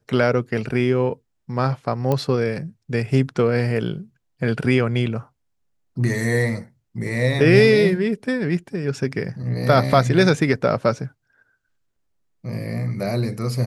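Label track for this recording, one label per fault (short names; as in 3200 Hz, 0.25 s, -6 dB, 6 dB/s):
2.120000	2.120000	pop -10 dBFS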